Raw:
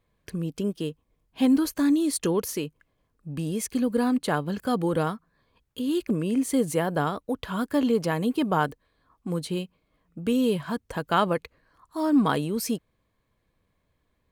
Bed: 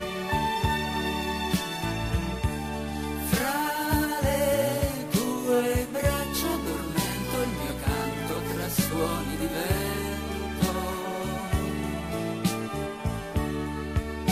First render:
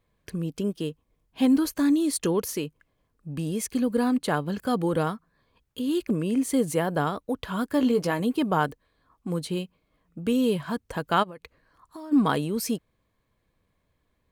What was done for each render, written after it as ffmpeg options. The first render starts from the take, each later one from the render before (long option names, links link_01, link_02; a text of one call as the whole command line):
ffmpeg -i in.wav -filter_complex "[0:a]asettb=1/sr,asplit=3[link_01][link_02][link_03];[link_01]atrim=end=7.784[link_04];[link_02]atrim=start=7.78:end=8.2,asetpts=PTS-STARTPTS,afade=type=in:duration=0.004:curve=qsin,afade=type=out:start_time=0.416:duration=0.004:curve=qsin,asplit=2[link_05][link_06];[link_06]adelay=16,volume=-8dB[link_07];[link_05][link_07]amix=inputs=2:normalize=0,atrim=end_sample=18522[link_08];[link_03]atrim=start=8.196[link_09];[link_04][link_08]acrossfade=duration=0.004:curve1=hsin:curve2=qsin[link_10];[link_10][link_09]acrossfade=duration=0.004:curve1=qsin:curve2=hsin,asplit=3[link_11][link_12][link_13];[link_11]afade=type=out:start_time=11.22:duration=0.02[link_14];[link_12]acompressor=threshold=-36dB:ratio=16:attack=3.2:release=140:knee=1:detection=peak,afade=type=in:start_time=11.22:duration=0.02,afade=type=out:start_time=12.11:duration=0.02[link_15];[link_13]afade=type=in:start_time=12.11:duration=0.02[link_16];[link_14][link_15][link_16]amix=inputs=3:normalize=0" out.wav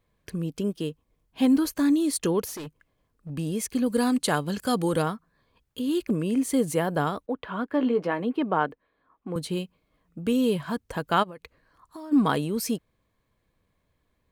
ffmpeg -i in.wav -filter_complex "[0:a]asettb=1/sr,asplit=3[link_01][link_02][link_03];[link_01]atrim=end=2.454[link_04];[link_02]atrim=start=2.45:end=3.3,asetpts=PTS-STARTPTS,afade=type=in:duration=0.004:curve=qsin,afade=type=out:start_time=0.846:duration=0.004:curve=qsin,volume=34dB,asoftclip=hard,volume=-34dB[link_05];[link_03]atrim=start=3.296[link_06];[link_04][link_05]acrossfade=duration=0.004:curve1=hsin:curve2=qsin[link_07];[link_07][link_06]acrossfade=duration=0.004:curve1=qsin:curve2=hsin,asettb=1/sr,asplit=3[link_08][link_09][link_10];[link_08]atrim=end=3.864[link_11];[link_09]atrim=start=3.86:end=5.02,asetpts=PTS-STARTPTS,afade=type=in:duration=0.004:curve=qsin,afade=type=out:start_time=1.156:duration=0.004:curve=qsin,equalizer=frequency=7800:width=0.45:gain=10[link_12];[link_10]atrim=start=5.016[link_13];[link_11][link_12]acrossfade=duration=0.004:curve1=hsin:curve2=qsin[link_14];[link_14][link_13]acrossfade=duration=0.004:curve1=qsin:curve2=hsin,asettb=1/sr,asplit=3[link_15][link_16][link_17];[link_15]atrim=end=7.264[link_18];[link_16]atrim=start=7.26:end=9.36,asetpts=PTS-STARTPTS,afade=type=in:duration=0.004:curve=qsin,afade=type=out:start_time=2.096:duration=0.004:curve=qsin,acrossover=split=200 3100:gain=0.224 1 0.0708[link_19][link_20][link_21];[link_19][link_20][link_21]amix=inputs=3:normalize=0[link_22];[link_17]atrim=start=9.356[link_23];[link_18][link_22]acrossfade=duration=0.004:curve1=hsin:curve2=qsin[link_24];[link_24][link_23]acrossfade=duration=0.004:curve1=qsin:curve2=hsin" out.wav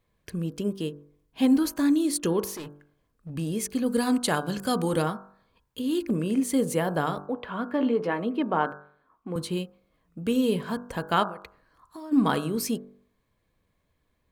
ffmpeg -i in.wav -af "bandreject=frequency=48.72:width_type=h:width=4,bandreject=frequency=97.44:width_type=h:width=4,bandreject=frequency=146.16:width_type=h:width=4,bandreject=frequency=194.88:width_type=h:width=4,bandreject=frequency=243.6:width_type=h:width=4,bandreject=frequency=292.32:width_type=h:width=4,bandreject=frequency=341.04:width_type=h:width=4,bandreject=frequency=389.76:width_type=h:width=4,bandreject=frequency=438.48:width_type=h:width=4,bandreject=frequency=487.2:width_type=h:width=4,bandreject=frequency=535.92:width_type=h:width=4,bandreject=frequency=584.64:width_type=h:width=4,bandreject=frequency=633.36:width_type=h:width=4,bandreject=frequency=682.08:width_type=h:width=4,bandreject=frequency=730.8:width_type=h:width=4,bandreject=frequency=779.52:width_type=h:width=4,bandreject=frequency=828.24:width_type=h:width=4,bandreject=frequency=876.96:width_type=h:width=4,bandreject=frequency=925.68:width_type=h:width=4,bandreject=frequency=974.4:width_type=h:width=4,bandreject=frequency=1023.12:width_type=h:width=4,bandreject=frequency=1071.84:width_type=h:width=4,bandreject=frequency=1120.56:width_type=h:width=4,bandreject=frequency=1169.28:width_type=h:width=4,bandreject=frequency=1218:width_type=h:width=4,bandreject=frequency=1266.72:width_type=h:width=4,bandreject=frequency=1315.44:width_type=h:width=4,bandreject=frequency=1364.16:width_type=h:width=4,bandreject=frequency=1412.88:width_type=h:width=4,bandreject=frequency=1461.6:width_type=h:width=4,bandreject=frequency=1510.32:width_type=h:width=4,bandreject=frequency=1559.04:width_type=h:width=4,bandreject=frequency=1607.76:width_type=h:width=4,bandreject=frequency=1656.48:width_type=h:width=4" out.wav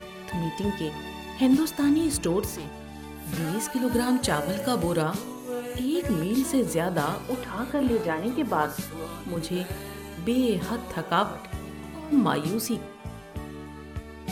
ffmpeg -i in.wav -i bed.wav -filter_complex "[1:a]volume=-9dB[link_01];[0:a][link_01]amix=inputs=2:normalize=0" out.wav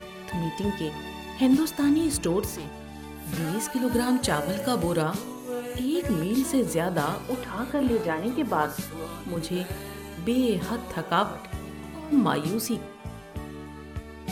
ffmpeg -i in.wav -af anull out.wav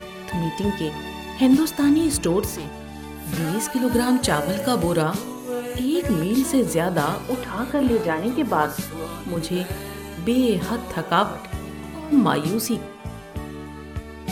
ffmpeg -i in.wav -af "volume=4.5dB" out.wav